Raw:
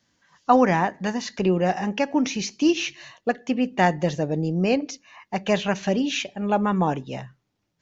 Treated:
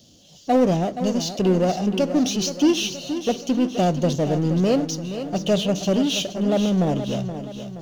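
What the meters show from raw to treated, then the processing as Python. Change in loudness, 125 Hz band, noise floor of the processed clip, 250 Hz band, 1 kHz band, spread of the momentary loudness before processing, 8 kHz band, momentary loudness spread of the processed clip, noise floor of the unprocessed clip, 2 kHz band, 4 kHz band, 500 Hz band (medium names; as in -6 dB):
+1.5 dB, +4.0 dB, -49 dBFS, +3.0 dB, -4.0 dB, 10 LU, no reading, 8 LU, -75 dBFS, -7.0 dB, +4.5 dB, +2.5 dB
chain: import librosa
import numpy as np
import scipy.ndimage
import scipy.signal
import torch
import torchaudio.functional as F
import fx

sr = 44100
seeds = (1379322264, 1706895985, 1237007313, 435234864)

y = scipy.signal.sosfilt(scipy.signal.ellip(3, 1.0, 40, [670.0, 3000.0], 'bandstop', fs=sr, output='sos'), x)
y = fx.power_curve(y, sr, exponent=0.7)
y = fx.echo_feedback(y, sr, ms=474, feedback_pct=50, wet_db=-10.5)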